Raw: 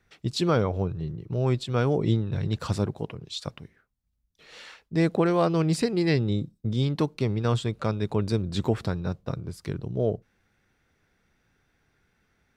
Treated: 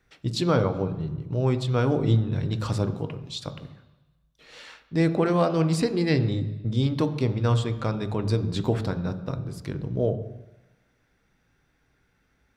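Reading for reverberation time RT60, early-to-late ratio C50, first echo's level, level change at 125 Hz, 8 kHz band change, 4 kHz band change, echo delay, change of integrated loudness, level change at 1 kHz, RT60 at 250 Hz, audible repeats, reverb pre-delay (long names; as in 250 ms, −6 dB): 1.1 s, 12.5 dB, no echo audible, +2.0 dB, 0.0 dB, 0.0 dB, no echo audible, +1.0 dB, +0.5 dB, 0.95 s, no echo audible, 3 ms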